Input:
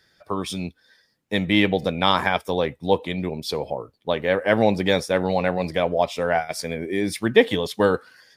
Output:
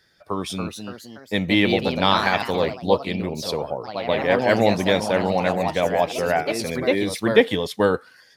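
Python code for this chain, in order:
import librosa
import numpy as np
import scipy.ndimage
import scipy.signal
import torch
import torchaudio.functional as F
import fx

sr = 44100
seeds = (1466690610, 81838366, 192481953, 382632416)

y = fx.echo_pitch(x, sr, ms=315, semitones=2, count=3, db_per_echo=-6.0)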